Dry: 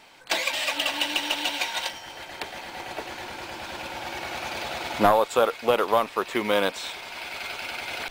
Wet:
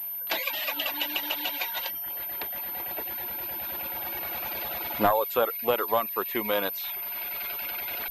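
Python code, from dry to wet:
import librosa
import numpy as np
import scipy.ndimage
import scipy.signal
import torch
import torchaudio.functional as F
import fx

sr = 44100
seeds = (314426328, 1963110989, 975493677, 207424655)

y = fx.dereverb_blind(x, sr, rt60_s=0.61)
y = fx.notch(y, sr, hz=1200.0, q=7.4, at=(2.95, 3.66))
y = fx.pwm(y, sr, carrier_hz=13000.0)
y = y * librosa.db_to_amplitude(-3.5)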